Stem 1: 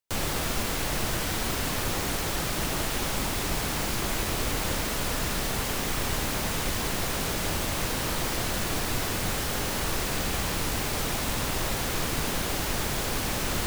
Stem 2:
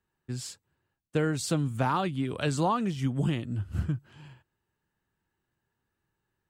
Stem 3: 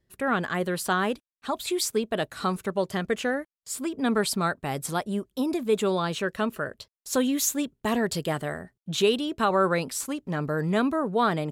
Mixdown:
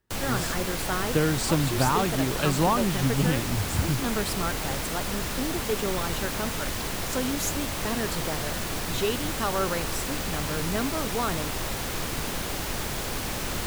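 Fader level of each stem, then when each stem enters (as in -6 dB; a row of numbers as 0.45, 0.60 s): -2.0, +3.0, -5.5 dB; 0.00, 0.00, 0.00 s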